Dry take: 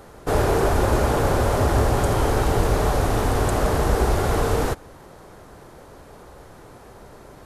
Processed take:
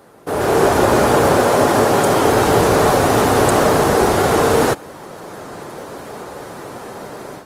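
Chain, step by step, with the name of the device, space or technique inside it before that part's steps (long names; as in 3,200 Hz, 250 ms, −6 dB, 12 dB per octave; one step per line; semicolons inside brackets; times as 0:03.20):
0:01.40–0:02.25: high-pass filter 130 Hz 12 dB per octave
video call (high-pass filter 160 Hz 12 dB per octave; automatic gain control gain up to 14 dB; Opus 24 kbit/s 48,000 Hz)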